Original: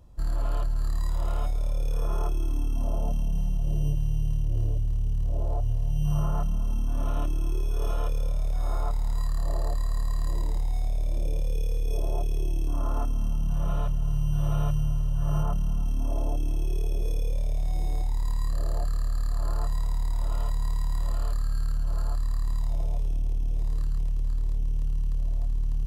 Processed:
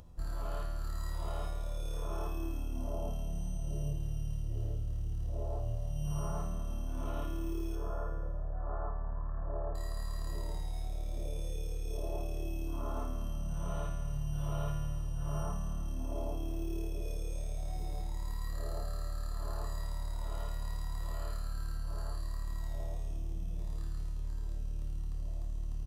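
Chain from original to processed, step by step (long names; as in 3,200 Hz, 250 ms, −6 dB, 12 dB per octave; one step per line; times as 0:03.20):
double-tracking delay 43 ms −10 dB
0:07.75–0:09.75: linear-phase brick-wall low-pass 1,800 Hz
tuned comb filter 83 Hz, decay 1.5 s, harmonics all, mix 90%
upward compression, threshold −57 dBFS
level +9.5 dB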